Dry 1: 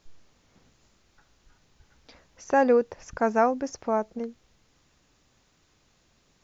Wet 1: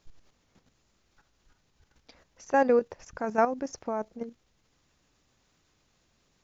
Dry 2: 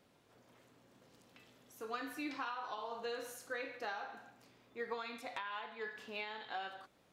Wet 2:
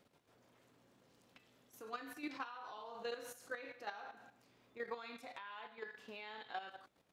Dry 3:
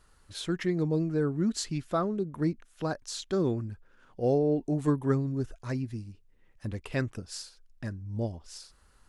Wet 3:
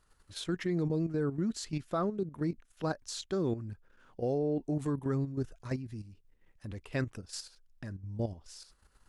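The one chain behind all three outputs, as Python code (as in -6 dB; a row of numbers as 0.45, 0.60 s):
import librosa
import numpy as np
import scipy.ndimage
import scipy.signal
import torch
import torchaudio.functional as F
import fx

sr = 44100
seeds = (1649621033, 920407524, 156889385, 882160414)

y = fx.level_steps(x, sr, step_db=10)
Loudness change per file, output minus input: -3.0, -4.5, -4.0 LU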